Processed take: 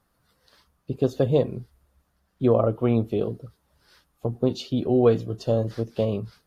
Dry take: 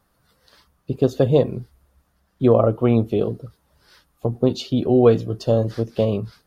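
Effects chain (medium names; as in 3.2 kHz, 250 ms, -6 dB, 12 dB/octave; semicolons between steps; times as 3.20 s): trim -4.5 dB; AAC 64 kbps 32 kHz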